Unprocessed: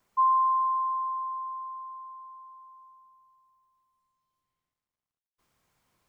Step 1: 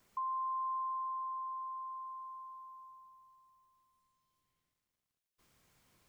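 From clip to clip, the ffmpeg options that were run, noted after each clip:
-af "equalizer=f=930:t=o:w=1.4:g=-5,alimiter=level_in=1.68:limit=0.0631:level=0:latency=1,volume=0.596,acompressor=threshold=0.00447:ratio=2,volume=1.58"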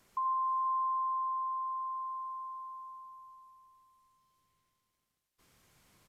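-filter_complex "[0:a]asplit=2[s0][s1];[s1]aecho=0:1:81|86|162|444|488:0.335|0.119|0.126|0.299|0.224[s2];[s0][s2]amix=inputs=2:normalize=0,aresample=32000,aresample=44100,volume=1.58"

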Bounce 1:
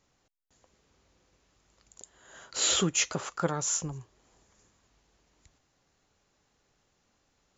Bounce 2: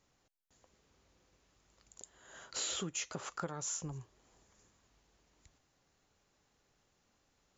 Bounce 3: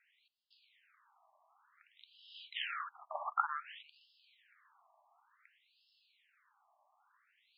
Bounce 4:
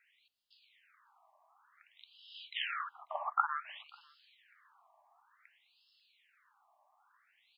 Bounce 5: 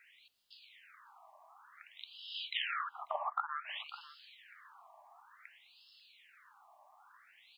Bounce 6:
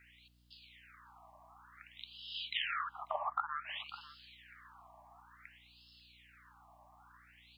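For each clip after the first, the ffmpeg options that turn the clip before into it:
-af "acompressor=threshold=0.0224:ratio=6,volume=0.708"
-af "afftfilt=real='re*between(b*sr/1024,840*pow(3800/840,0.5+0.5*sin(2*PI*0.55*pts/sr))/1.41,840*pow(3800/840,0.5+0.5*sin(2*PI*0.55*pts/sr))*1.41)':imag='im*between(b*sr/1024,840*pow(3800/840,0.5+0.5*sin(2*PI*0.55*pts/sr))/1.41,840*pow(3800/840,0.5+0.5*sin(2*PI*0.55*pts/sr))*1.41)':win_size=1024:overlap=0.75,volume=3.35"
-filter_complex "[0:a]asplit=2[s0][s1];[s1]adelay=542.3,volume=0.0447,highshelf=f=4000:g=-12.2[s2];[s0][s2]amix=inputs=2:normalize=0,volume=1.33"
-af "acompressor=threshold=0.00708:ratio=5,volume=2.66"
-af "aeval=exprs='val(0)+0.000398*(sin(2*PI*60*n/s)+sin(2*PI*2*60*n/s)/2+sin(2*PI*3*60*n/s)/3+sin(2*PI*4*60*n/s)/4+sin(2*PI*5*60*n/s)/5)':c=same"

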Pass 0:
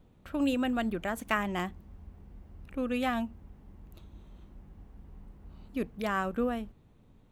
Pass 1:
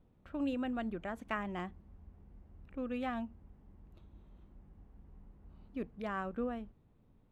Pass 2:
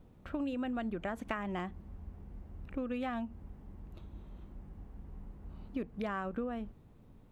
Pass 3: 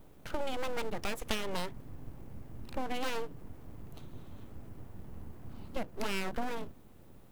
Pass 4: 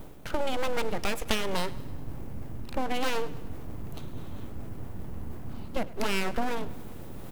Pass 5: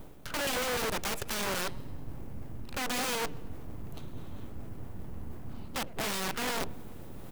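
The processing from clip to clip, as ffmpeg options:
-af "aemphasis=mode=reproduction:type=75fm,volume=0.422"
-af "acompressor=threshold=0.00794:ratio=6,volume=2.66"
-af "aeval=exprs='abs(val(0))':c=same,crystalizer=i=2:c=0,volume=1.58"
-af "areverse,acompressor=mode=upward:threshold=0.0178:ratio=2.5,areverse,aecho=1:1:102|204|306|408|510:0.112|0.064|0.0365|0.0208|0.0118,volume=2"
-af "aeval=exprs='(mod(15.8*val(0)+1,2)-1)/15.8':c=same,volume=0.668"

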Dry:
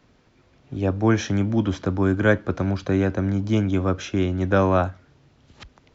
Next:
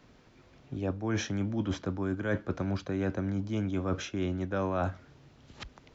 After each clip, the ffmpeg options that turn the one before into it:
-af "equalizer=f=84:w=4.7:g=-5,areverse,acompressor=threshold=0.0398:ratio=6,areverse"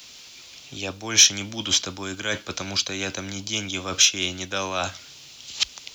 -filter_complex "[0:a]acrossover=split=470[s0][s1];[s1]aexciter=amount=2.7:drive=9.7:freq=2500[s2];[s0][s2]amix=inputs=2:normalize=0,tiltshelf=f=690:g=-8,volume=1.41"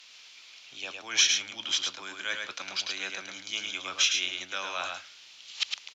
-filter_complex "[0:a]bandpass=f=2100:t=q:w=0.75:csg=0,asplit=2[s0][s1];[s1]aecho=0:1:108:0.596[s2];[s0][s2]amix=inputs=2:normalize=0,volume=0.631"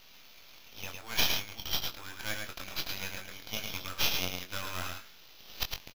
-filter_complex "[0:a]aresample=11025,aeval=exprs='max(val(0),0)':c=same,aresample=44100,acrusher=samples=5:mix=1:aa=0.000001,asplit=2[s0][s1];[s1]adelay=22,volume=0.447[s2];[s0][s2]amix=inputs=2:normalize=0"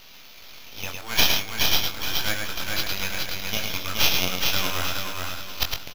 -af "aecho=1:1:422|844|1266|1688|2110:0.668|0.247|0.0915|0.0339|0.0125,volume=2.66"

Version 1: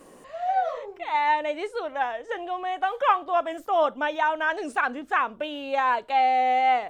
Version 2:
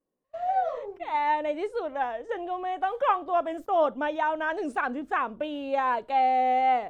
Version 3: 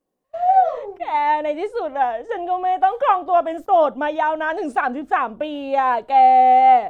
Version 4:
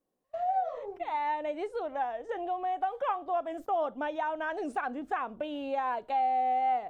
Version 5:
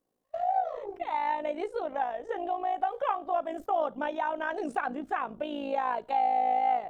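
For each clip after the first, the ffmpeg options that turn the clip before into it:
-af "tiltshelf=f=800:g=5.5,agate=range=0.0178:threshold=0.01:ratio=16:detection=peak,volume=0.794"
-af "equalizer=f=750:w=5.2:g=6.5,volume=1.88"
-af "acompressor=threshold=0.0316:ratio=2,volume=0.562"
-af "tremolo=f=55:d=0.667,volume=1.68"

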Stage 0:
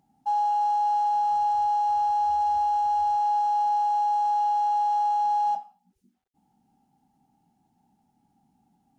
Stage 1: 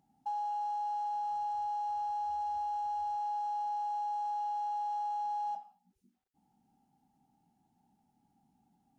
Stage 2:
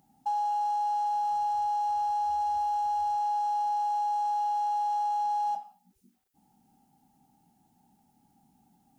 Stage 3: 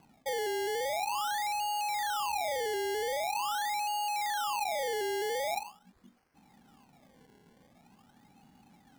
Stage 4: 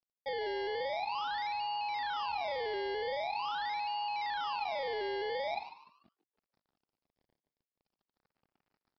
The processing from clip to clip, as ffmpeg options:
-af "acompressor=threshold=0.0251:ratio=2.5,volume=0.562"
-af "crystalizer=i=1:c=0,volume=2.11"
-af "areverse,acompressor=threshold=0.0141:ratio=6,areverse,acrusher=samples=24:mix=1:aa=0.000001:lfo=1:lforange=24:lforate=0.44,volume=1.78"
-filter_complex "[0:a]aresample=11025,aeval=exprs='sgn(val(0))*max(abs(val(0))-0.00188,0)':c=same,aresample=44100,asplit=4[s0][s1][s2][s3];[s1]adelay=147,afreqshift=110,volume=0.2[s4];[s2]adelay=294,afreqshift=220,volume=0.0638[s5];[s3]adelay=441,afreqshift=330,volume=0.0204[s6];[s0][s4][s5][s6]amix=inputs=4:normalize=0,volume=0.75"

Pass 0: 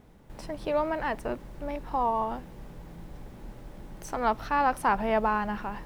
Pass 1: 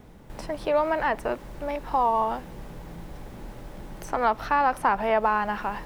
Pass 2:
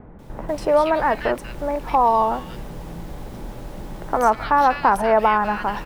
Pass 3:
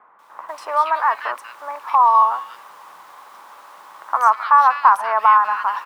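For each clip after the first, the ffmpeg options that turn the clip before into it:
-filter_complex "[0:a]acrossover=split=410|2700[s0][s1][s2];[s0]acompressor=threshold=0.00708:ratio=4[s3];[s1]acompressor=threshold=0.0562:ratio=4[s4];[s2]acompressor=threshold=0.00251:ratio=4[s5];[s3][s4][s5]amix=inputs=3:normalize=0,volume=2.11"
-filter_complex "[0:a]acrossover=split=1900[s0][s1];[s1]adelay=190[s2];[s0][s2]amix=inputs=2:normalize=0,volume=2.11"
-af "highpass=f=1100:t=q:w=5,volume=0.668"

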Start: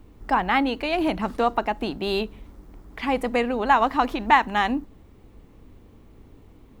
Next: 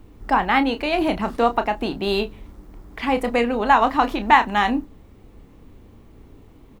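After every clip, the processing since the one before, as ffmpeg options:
-filter_complex "[0:a]asplit=2[s0][s1];[s1]adelay=30,volume=0.316[s2];[s0][s2]amix=inputs=2:normalize=0,volume=1.33"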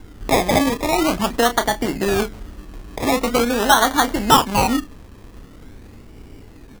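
-filter_complex "[0:a]asplit=2[s0][s1];[s1]acompressor=threshold=0.0562:ratio=6,volume=1.19[s2];[s0][s2]amix=inputs=2:normalize=0,acrusher=samples=24:mix=1:aa=0.000001:lfo=1:lforange=14.4:lforate=0.44,volume=0.891"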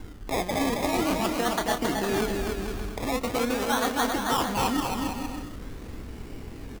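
-af "areverse,acompressor=threshold=0.0562:ratio=6,areverse,aecho=1:1:270|459|591.3|683.9|748.7:0.631|0.398|0.251|0.158|0.1"

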